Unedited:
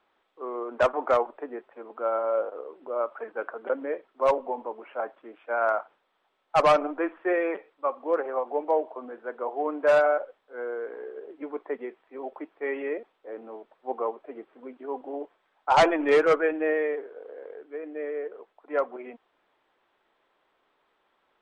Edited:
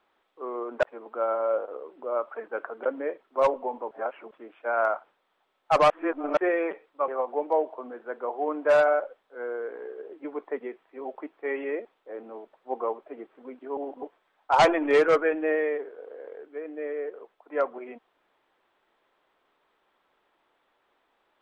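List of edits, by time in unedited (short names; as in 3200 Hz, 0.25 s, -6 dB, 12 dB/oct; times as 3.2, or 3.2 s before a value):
0.83–1.67 cut
4.75–5.15 reverse
6.74–7.21 reverse
7.92–8.26 cut
14.95–15.21 reverse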